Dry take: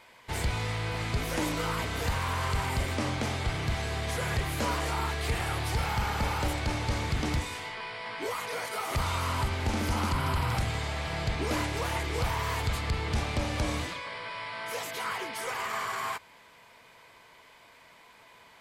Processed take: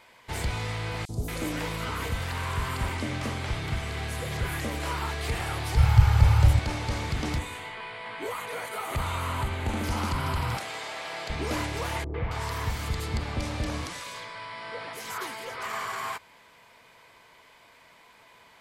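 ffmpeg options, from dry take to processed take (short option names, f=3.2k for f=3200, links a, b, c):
-filter_complex "[0:a]asettb=1/sr,asplit=3[a][b][c];[a]atrim=end=1.054[d];[b]atrim=start=1.05:end=5.02,asetpts=PTS-STARTPTS,afade=t=in:d=0.004:c=qsin,afade=t=out:st=3.966:d=0.004:c=qsin,acrossover=split=690|5700[e][f][g];[e]adelay=40[h];[f]adelay=230[i];[h][i][g]amix=inputs=3:normalize=0,atrim=end_sample=175077[j];[c]atrim=start=5.016[k];[d][j]acrossfade=d=0.004:c1=hsin:c2=qsin[l];[l][k]acrossfade=d=0.004:c1=qsin:c2=hsin,asettb=1/sr,asplit=3[m][n][o];[m]atrim=end=5.774[p];[n]atrim=start=5.77:end=6.59,asetpts=PTS-STARTPTS,afade=t=in:d=0.004:c=qsin,afade=t=out:st=0.816:d=0.004:c=qsin,lowshelf=f=160:t=q:w=3:g=11[q];[o]atrim=start=6.586[r];[p][q]acrossfade=d=0.004:c1=hsin:c2=qsin[s];[s][r]acrossfade=d=0.004:c1=qsin:c2=hsin,asettb=1/sr,asplit=3[t][u][v];[t]atrim=end=7.384[w];[u]atrim=start=7.38:end=9.84,asetpts=PTS-STARTPTS,afade=t=in:d=0.004:c=qsin,afade=t=out:st=2.456:d=0.004:c=qsin,equalizer=f=5.3k:w=3.2:g=-13[x];[v]atrim=start=9.836[y];[w][x]acrossfade=d=0.004:c1=hsin:c2=qsin[z];[z][y]acrossfade=d=0.004:c1=qsin:c2=hsin,asettb=1/sr,asplit=3[aa][ab][ac];[aa]atrim=end=10.574[ad];[ab]atrim=start=10.57:end=11.3,asetpts=PTS-STARTPTS,afade=t=in:d=0.004:c=qsin,afade=t=out:st=0.726:d=0.004:c=qsin,highpass=420[ae];[ac]atrim=start=11.296[af];[ad][ae]acrossfade=d=0.004:c1=hsin:c2=qsin[ag];[ag][af]acrossfade=d=0.004:c1=qsin:c2=hsin,asettb=1/sr,asplit=3[ah][ai][aj];[ah]atrim=end=12.044[ak];[ai]atrim=start=12.04:end=15.63,asetpts=PTS-STARTPTS,afade=t=in:d=0.004:c=qsin,afade=t=out:st=3.586:d=0.004:c=qsin,acrossover=split=690|2600[al][am][an];[am]adelay=100[ao];[an]adelay=270[ap];[al][ao][ap]amix=inputs=3:normalize=0,atrim=end_sample=158319[aq];[aj]atrim=start=15.626[ar];[ak][aq]acrossfade=d=0.004:c1=hsin:c2=qsin[as];[as][ar]acrossfade=d=0.004:c1=qsin:c2=hsin"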